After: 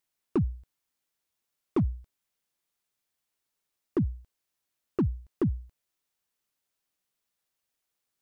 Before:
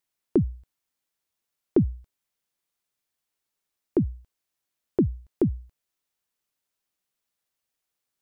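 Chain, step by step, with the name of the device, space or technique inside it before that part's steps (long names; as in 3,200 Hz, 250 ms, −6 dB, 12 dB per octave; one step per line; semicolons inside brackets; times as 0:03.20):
clipper into limiter (hard clipping −16 dBFS, distortion −16 dB; brickwall limiter −20 dBFS, peak gain reduction 4 dB)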